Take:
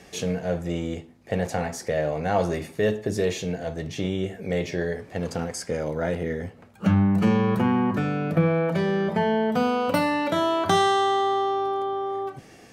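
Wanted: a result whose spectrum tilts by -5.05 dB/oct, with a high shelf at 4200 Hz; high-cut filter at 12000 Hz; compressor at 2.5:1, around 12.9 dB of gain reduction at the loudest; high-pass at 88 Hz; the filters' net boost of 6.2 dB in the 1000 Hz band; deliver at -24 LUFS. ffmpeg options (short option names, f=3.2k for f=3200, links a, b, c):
-af "highpass=88,lowpass=12k,equalizer=f=1k:t=o:g=8,highshelf=f=4.2k:g=5.5,acompressor=threshold=-32dB:ratio=2.5,volume=8dB"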